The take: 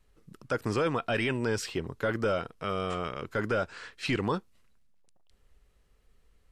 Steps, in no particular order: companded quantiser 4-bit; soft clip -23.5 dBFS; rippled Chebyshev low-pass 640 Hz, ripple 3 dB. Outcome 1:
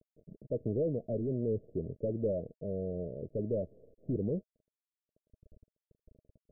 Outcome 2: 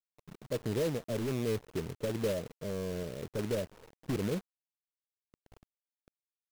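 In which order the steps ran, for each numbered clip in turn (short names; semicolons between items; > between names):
soft clip > companded quantiser > rippled Chebyshev low-pass; soft clip > rippled Chebyshev low-pass > companded quantiser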